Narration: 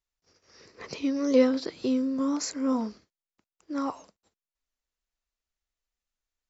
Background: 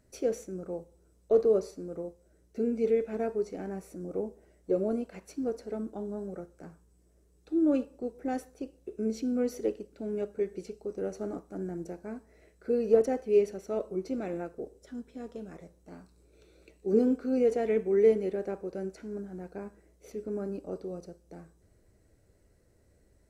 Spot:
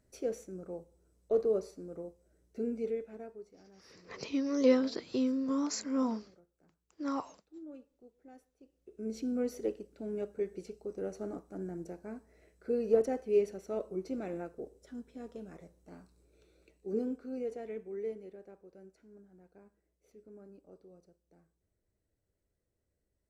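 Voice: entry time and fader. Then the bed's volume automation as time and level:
3.30 s, −4.5 dB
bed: 0:02.72 −5.5 dB
0:03.67 −22.5 dB
0:08.58 −22.5 dB
0:09.18 −4 dB
0:16.06 −4 dB
0:18.49 −18.5 dB

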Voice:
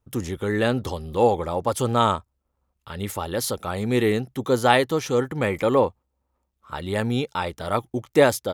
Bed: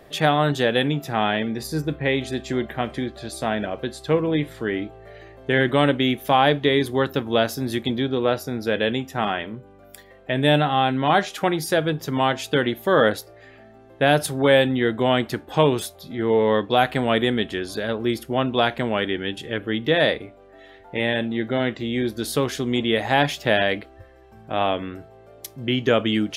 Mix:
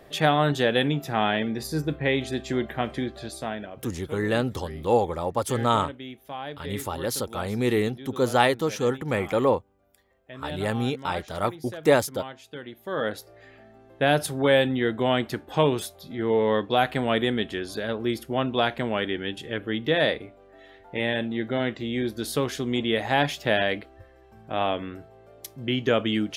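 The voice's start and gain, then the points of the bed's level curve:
3.70 s, −2.5 dB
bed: 0:03.22 −2 dB
0:04.03 −18.5 dB
0:12.62 −18.5 dB
0:13.36 −3.5 dB

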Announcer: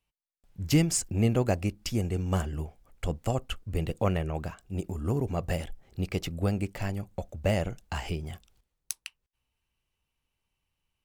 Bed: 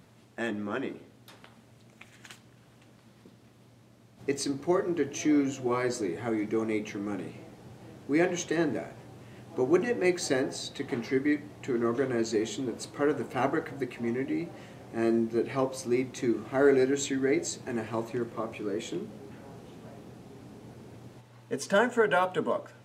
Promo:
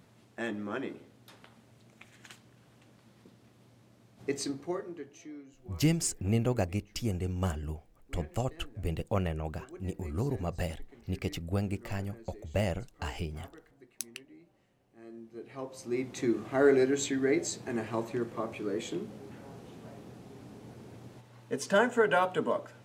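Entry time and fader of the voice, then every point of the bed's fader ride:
5.10 s, −3.5 dB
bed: 0:04.45 −3 dB
0:05.45 −24 dB
0:15.03 −24 dB
0:16.16 −1 dB

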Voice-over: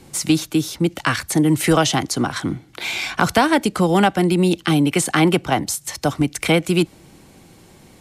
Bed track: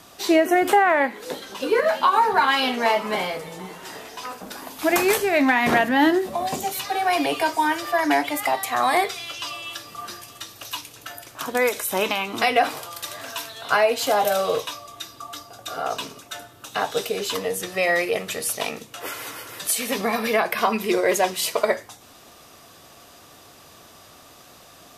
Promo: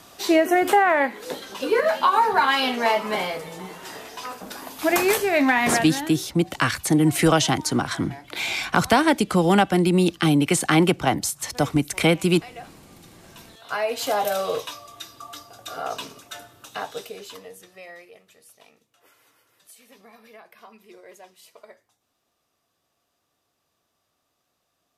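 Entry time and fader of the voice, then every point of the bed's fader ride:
5.55 s, −2.0 dB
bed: 0:05.68 −0.5 dB
0:06.20 −21.5 dB
0:13.14 −21.5 dB
0:14.00 −3 dB
0:16.54 −3 dB
0:18.23 −26.5 dB

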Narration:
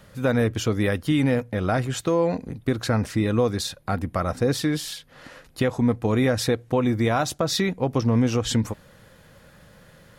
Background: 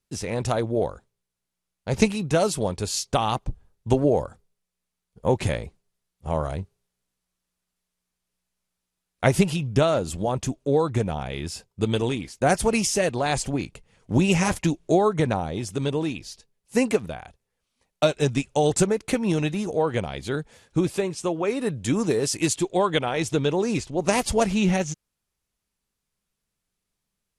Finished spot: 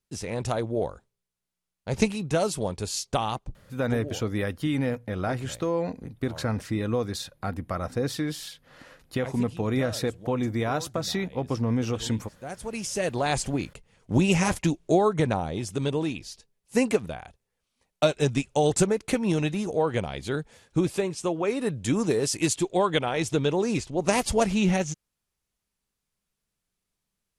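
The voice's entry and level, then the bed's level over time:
3.55 s, −5.5 dB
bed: 0:03.21 −3.5 dB
0:04.11 −18.5 dB
0:12.45 −18.5 dB
0:13.16 −1.5 dB

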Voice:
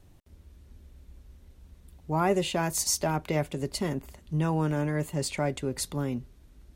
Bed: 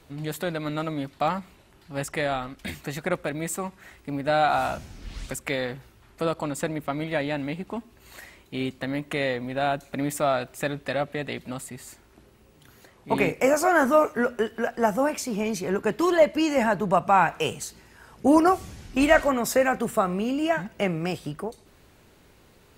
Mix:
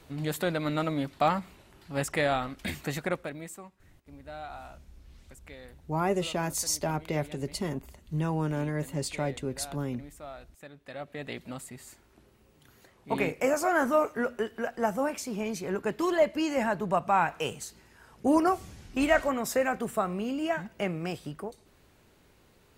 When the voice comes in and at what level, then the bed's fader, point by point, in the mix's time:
3.80 s, −2.5 dB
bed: 0:02.93 0 dB
0:03.84 −20 dB
0:10.70 −20 dB
0:11.30 −5.5 dB

